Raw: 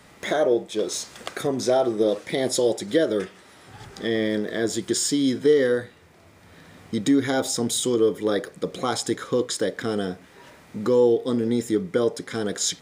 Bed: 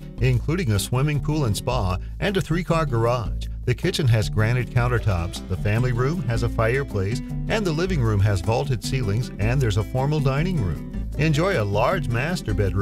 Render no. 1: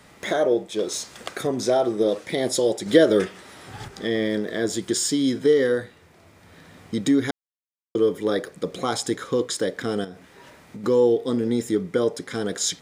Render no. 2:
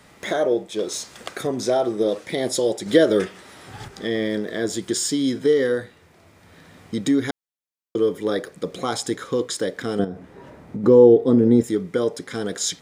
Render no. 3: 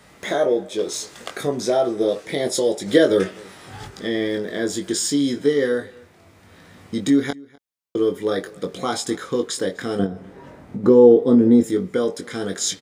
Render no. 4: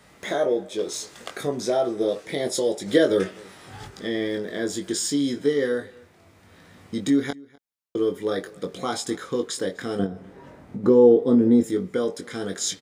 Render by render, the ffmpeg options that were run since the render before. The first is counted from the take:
-filter_complex "[0:a]asettb=1/sr,asplit=3[s0][s1][s2];[s0]atrim=end=10.044[s3];[s1]atrim=start=10.04:end=10.84,asetpts=PTS-STARTPTS,afade=t=in:d=0.004:c=qsin,afade=t=out:st=0.796:d=0.004:c=qsin,acompressor=threshold=0.0224:ratio=6:attack=3.2:release=140:knee=1:detection=peak[s4];[s2]atrim=start=10.836[s5];[s3][s4]acrossfade=d=0.004:c1=hsin:c2=qsin[s6];[s6][s5]acrossfade=d=0.004:c1=qsin:c2=hsin,asplit=5[s7][s8][s9][s10][s11];[s7]atrim=end=2.862[s12];[s8]atrim=start=2.858:end=3.882,asetpts=PTS-STARTPTS,volume=1.88[s13];[s9]atrim=start=3.878:end=7.31,asetpts=PTS-STARTPTS,afade=t=out:st=3.428:d=0.004:c=hsin[s14];[s10]atrim=start=7.31:end=7.95,asetpts=PTS-STARTPTS,volume=0[s15];[s11]atrim=start=7.95,asetpts=PTS-STARTPTS,afade=t=in:d=0.004:c=hsin[s16];[s12][s13]acrossfade=d=0.004:c1=hsin:c2=hsin[s17];[s14][s15][s16]concat=n=3:v=0:a=1[s18];[s17][s18]acrossfade=d=0.004:c1=hsin:c2=hsin"
-filter_complex "[0:a]asettb=1/sr,asplit=3[s0][s1][s2];[s0]atrim=end=9.994[s3];[s1]atrim=start=9.99:end=11.64,asetpts=PTS-STARTPTS,afade=t=in:d=0.004:c=qsin,afade=t=out:st=1.646:d=0.004:c=qsin,tiltshelf=f=1300:g=9[s4];[s2]atrim=start=11.636[s5];[s3][s4]acrossfade=d=0.004:c1=hsin:c2=qsin[s6];[s6][s5]acrossfade=d=0.004:c1=qsin:c2=hsin"
-filter_complex "[0:a]asplit=2[s0][s1];[s1]adelay=21,volume=0.531[s2];[s0][s2]amix=inputs=2:normalize=0,asplit=2[s3][s4];[s4]adelay=250.7,volume=0.0631,highshelf=f=4000:g=-5.64[s5];[s3][s5]amix=inputs=2:normalize=0"
-af "volume=0.668"

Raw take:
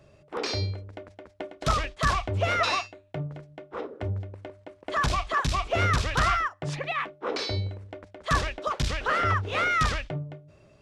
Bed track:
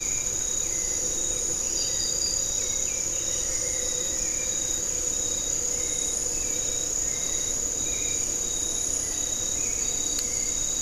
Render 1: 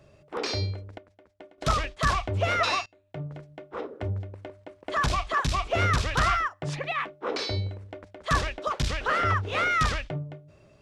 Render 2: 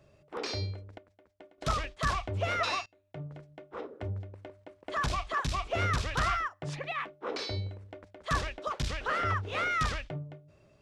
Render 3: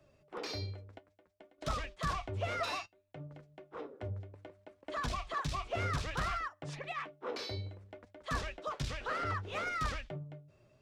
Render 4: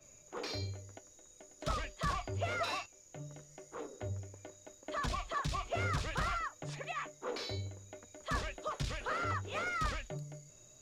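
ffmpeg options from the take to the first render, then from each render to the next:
-filter_complex "[0:a]asplit=4[s0][s1][s2][s3];[s0]atrim=end=0.982[s4];[s1]atrim=start=0.978:end=1.582,asetpts=PTS-STARTPTS,volume=0.282[s5];[s2]atrim=start=1.578:end=2.86,asetpts=PTS-STARTPTS,afade=t=out:st=1.278:d=0.004:c=hsin:silence=0.0794328[s6];[s3]atrim=start=2.86,asetpts=PTS-STARTPTS,afade=t=in:d=0.5:silence=0.0794328[s7];[s4][s5]acrossfade=d=0.004:c1=hsin:c2=hsin[s8];[s6][s7]concat=n=2:v=0:a=1[s9];[s8][s9]acrossfade=d=0.004:c1=hsin:c2=hsin"
-af "volume=0.531"
-filter_complex "[0:a]flanger=delay=3.1:depth=5.5:regen=57:speed=0.61:shape=triangular,acrossover=split=100|950[s0][s1][s2];[s2]asoftclip=type=tanh:threshold=0.02[s3];[s0][s1][s3]amix=inputs=3:normalize=0"
-filter_complex "[1:a]volume=0.0224[s0];[0:a][s0]amix=inputs=2:normalize=0"

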